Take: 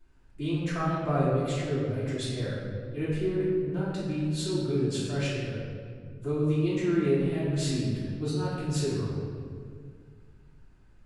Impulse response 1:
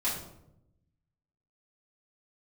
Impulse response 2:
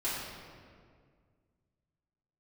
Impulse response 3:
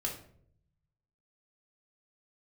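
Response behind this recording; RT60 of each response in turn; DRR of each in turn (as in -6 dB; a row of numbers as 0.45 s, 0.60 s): 2; 0.80 s, 2.0 s, 0.60 s; -9.5 dB, -11.5 dB, -1.5 dB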